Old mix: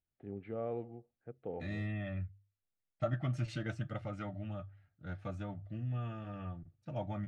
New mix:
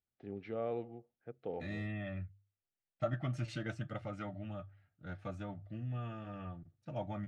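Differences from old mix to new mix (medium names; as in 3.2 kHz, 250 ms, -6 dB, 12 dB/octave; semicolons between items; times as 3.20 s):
first voice: remove distance through air 450 m; master: add bass shelf 75 Hz -9.5 dB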